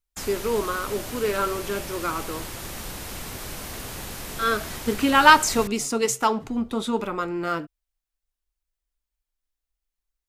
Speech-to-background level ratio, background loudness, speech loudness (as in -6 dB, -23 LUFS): 11.0 dB, -34.5 LUFS, -23.5 LUFS